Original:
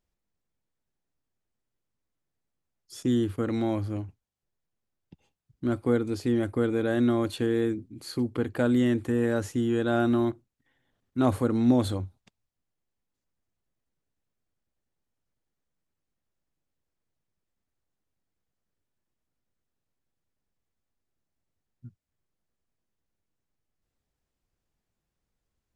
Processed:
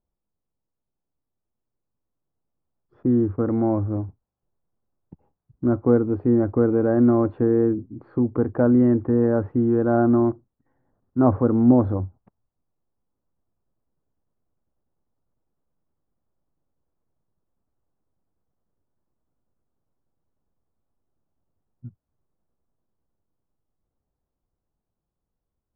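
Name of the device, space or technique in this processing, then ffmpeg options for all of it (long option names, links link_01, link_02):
action camera in a waterproof case: -af "lowpass=frequency=1200:width=0.5412,lowpass=frequency=1200:width=1.3066,dynaudnorm=framelen=410:gausssize=13:maxgain=7dB" -ar 48000 -c:a aac -b:a 128k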